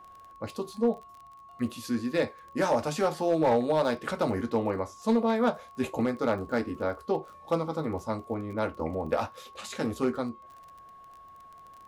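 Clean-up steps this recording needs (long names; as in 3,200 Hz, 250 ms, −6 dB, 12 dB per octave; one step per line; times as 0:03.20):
clipped peaks rebuilt −17.5 dBFS
click removal
notch filter 1,100 Hz, Q 30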